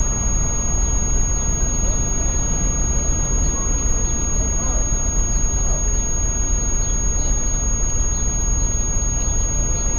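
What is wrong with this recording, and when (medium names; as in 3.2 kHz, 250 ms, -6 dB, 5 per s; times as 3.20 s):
whine 6.6 kHz -22 dBFS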